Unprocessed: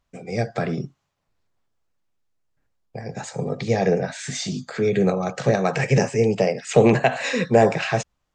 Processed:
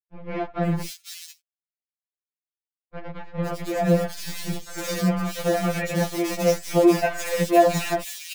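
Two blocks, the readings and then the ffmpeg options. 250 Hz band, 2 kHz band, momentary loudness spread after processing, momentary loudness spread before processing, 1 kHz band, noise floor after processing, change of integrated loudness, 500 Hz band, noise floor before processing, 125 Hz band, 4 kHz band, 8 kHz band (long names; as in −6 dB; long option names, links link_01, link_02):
−0.5 dB, −4.0 dB, 17 LU, 13 LU, −0.5 dB, below −85 dBFS, −2.0 dB, −2.5 dB, −76 dBFS, −4.0 dB, −0.5 dB, +0.5 dB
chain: -filter_complex "[0:a]acrusher=bits=5:dc=4:mix=0:aa=0.000001,acrossover=split=2700[link_01][link_02];[link_02]adelay=500[link_03];[link_01][link_03]amix=inputs=2:normalize=0,afftfilt=real='re*2.83*eq(mod(b,8),0)':imag='im*2.83*eq(mod(b,8),0)':win_size=2048:overlap=0.75"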